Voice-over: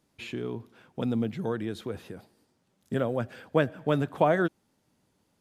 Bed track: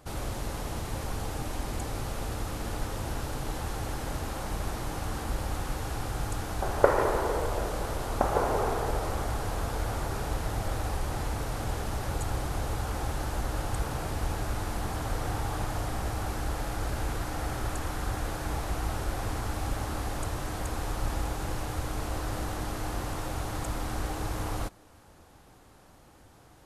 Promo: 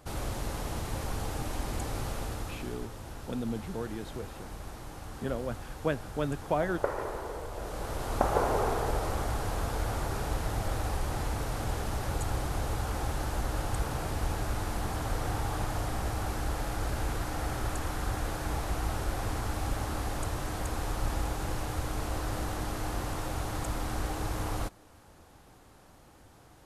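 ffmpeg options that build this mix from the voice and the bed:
ffmpeg -i stem1.wav -i stem2.wav -filter_complex "[0:a]adelay=2300,volume=-6dB[link_01];[1:a]volume=8.5dB,afade=type=out:start_time=2.08:duration=0.79:silence=0.354813,afade=type=in:start_time=7.52:duration=0.63:silence=0.354813[link_02];[link_01][link_02]amix=inputs=2:normalize=0" out.wav

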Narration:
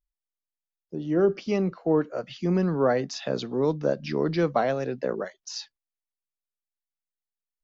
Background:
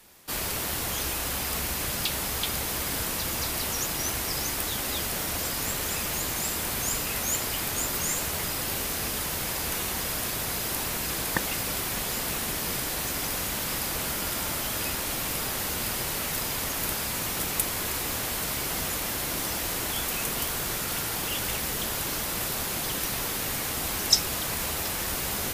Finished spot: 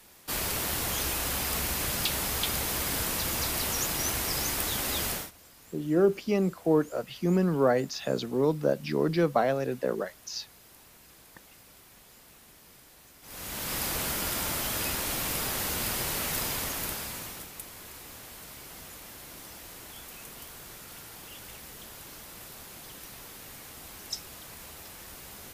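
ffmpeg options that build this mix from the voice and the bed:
ffmpeg -i stem1.wav -i stem2.wav -filter_complex "[0:a]adelay=4800,volume=-1dB[link_01];[1:a]volume=23dB,afade=type=out:start_time=5.1:duration=0.21:silence=0.0630957,afade=type=in:start_time=13.22:duration=0.61:silence=0.0668344,afade=type=out:start_time=16.44:duration=1.06:silence=0.188365[link_02];[link_01][link_02]amix=inputs=2:normalize=0" out.wav

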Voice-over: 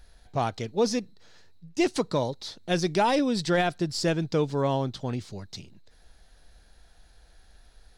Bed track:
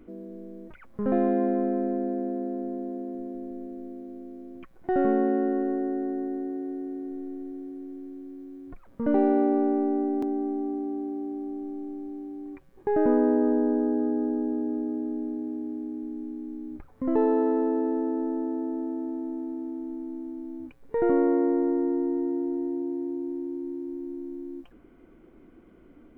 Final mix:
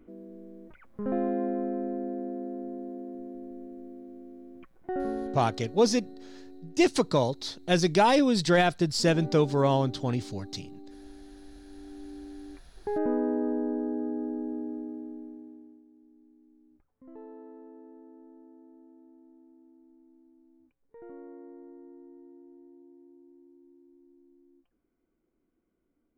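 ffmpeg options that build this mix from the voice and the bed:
ffmpeg -i stem1.wav -i stem2.wav -filter_complex "[0:a]adelay=5000,volume=2dB[link_01];[1:a]volume=6dB,afade=type=out:start_time=4.62:duration=0.96:silence=0.251189,afade=type=in:start_time=11.63:duration=0.5:silence=0.281838,afade=type=out:start_time=14.57:duration=1.27:silence=0.125893[link_02];[link_01][link_02]amix=inputs=2:normalize=0" out.wav

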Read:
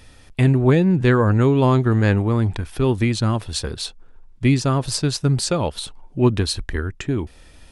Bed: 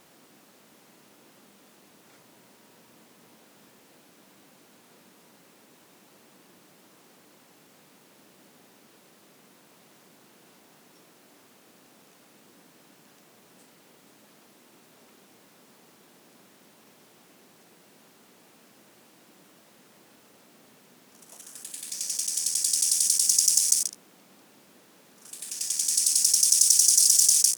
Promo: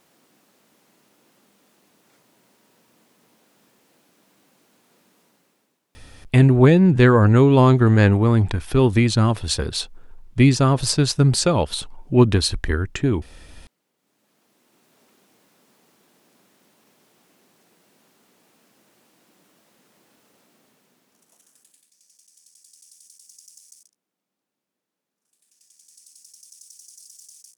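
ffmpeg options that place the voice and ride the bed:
ffmpeg -i stem1.wav -i stem2.wav -filter_complex "[0:a]adelay=5950,volume=2.5dB[link_01];[1:a]volume=10.5dB,afade=type=out:start_time=5.18:duration=0.63:silence=0.188365,afade=type=in:start_time=13.96:duration=1.04:silence=0.177828,afade=type=out:start_time=20.4:duration=1.5:silence=0.0630957[link_02];[link_01][link_02]amix=inputs=2:normalize=0" out.wav

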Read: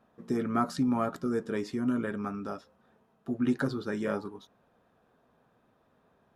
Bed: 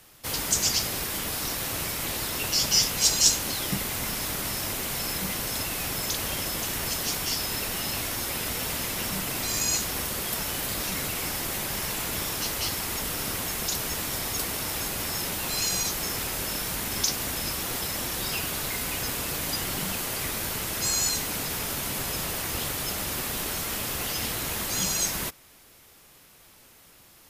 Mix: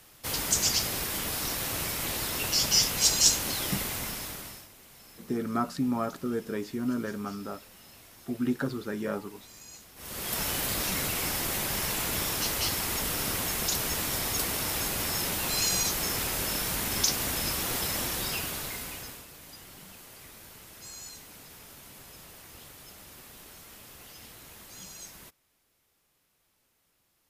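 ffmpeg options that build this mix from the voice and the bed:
ffmpeg -i stem1.wav -i stem2.wav -filter_complex "[0:a]adelay=5000,volume=-1dB[link_01];[1:a]volume=21dB,afade=type=out:start_time=3.78:duration=0.9:silence=0.0891251,afade=type=in:start_time=9.96:duration=0.47:silence=0.0749894,afade=type=out:start_time=17.97:duration=1.3:silence=0.11885[link_02];[link_01][link_02]amix=inputs=2:normalize=0" out.wav

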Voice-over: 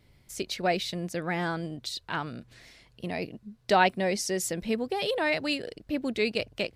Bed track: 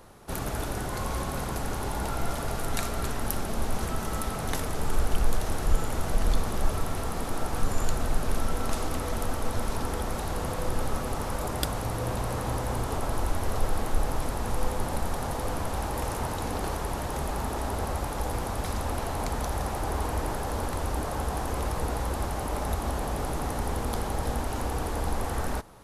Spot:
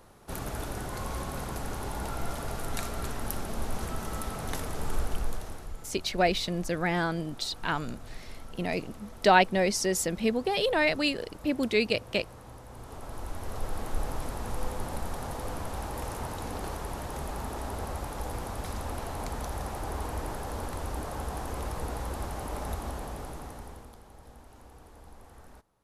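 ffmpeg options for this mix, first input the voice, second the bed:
ffmpeg -i stem1.wav -i stem2.wav -filter_complex "[0:a]adelay=5550,volume=2dB[link_01];[1:a]volume=8.5dB,afade=type=out:start_time=4.95:duration=0.78:silence=0.211349,afade=type=in:start_time=12.69:duration=1.33:silence=0.237137,afade=type=out:start_time=22.7:duration=1.26:silence=0.141254[link_02];[link_01][link_02]amix=inputs=2:normalize=0" out.wav

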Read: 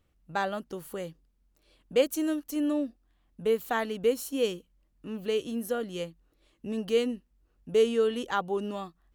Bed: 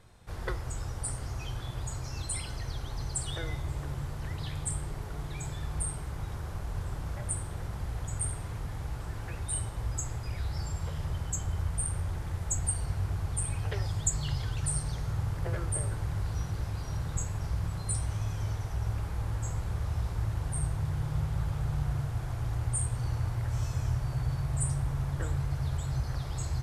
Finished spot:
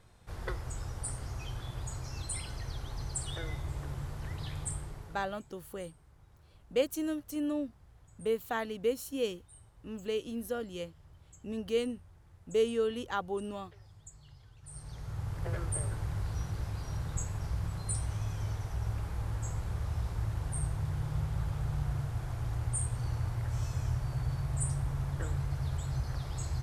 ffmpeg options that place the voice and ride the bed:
ffmpeg -i stem1.wav -i stem2.wav -filter_complex "[0:a]adelay=4800,volume=-5dB[link_01];[1:a]volume=18dB,afade=type=out:start_time=4.62:duration=0.81:silence=0.0944061,afade=type=in:start_time=14.62:duration=0.9:silence=0.0891251[link_02];[link_01][link_02]amix=inputs=2:normalize=0" out.wav

